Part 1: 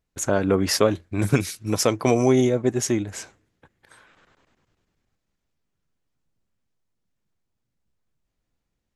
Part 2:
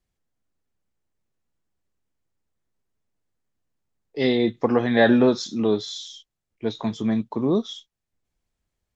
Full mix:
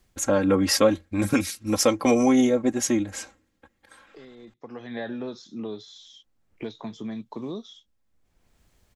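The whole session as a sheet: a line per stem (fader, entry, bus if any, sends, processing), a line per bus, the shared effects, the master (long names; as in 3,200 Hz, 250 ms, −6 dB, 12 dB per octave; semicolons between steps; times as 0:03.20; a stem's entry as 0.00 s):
−2.0 dB, 0.00 s, muted 0:04.54–0:05.95, no send, comb filter 3.7 ms, depth 78%
−13.5 dB, 0.00 s, no send, multiband upward and downward compressor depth 100%; automatic ducking −14 dB, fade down 0.40 s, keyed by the first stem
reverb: not used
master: no processing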